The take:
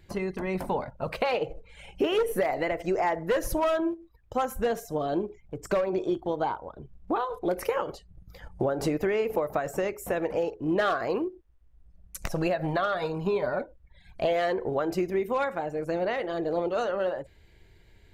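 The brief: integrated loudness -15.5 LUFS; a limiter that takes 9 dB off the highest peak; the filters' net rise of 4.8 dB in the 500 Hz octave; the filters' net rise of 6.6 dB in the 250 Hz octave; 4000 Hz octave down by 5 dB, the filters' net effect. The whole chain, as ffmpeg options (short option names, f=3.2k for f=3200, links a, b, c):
-af "equalizer=f=250:t=o:g=8.5,equalizer=f=500:t=o:g=3.5,equalizer=f=4k:t=o:g=-7.5,volume=11dB,alimiter=limit=-6dB:level=0:latency=1"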